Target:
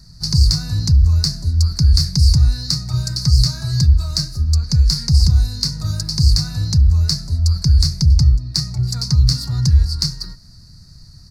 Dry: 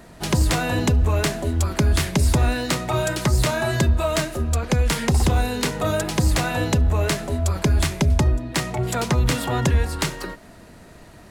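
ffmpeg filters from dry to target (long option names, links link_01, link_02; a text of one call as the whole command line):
ffmpeg -i in.wav -af "firequalizer=gain_entry='entry(140,0);entry(220,-16);entry(410,-29);entry(580,-30);entry(1300,-19);entry(3200,-30);entry(4500,10);entry(7300,-10);entry(15000,-13)':delay=0.05:min_phase=1,volume=7dB" out.wav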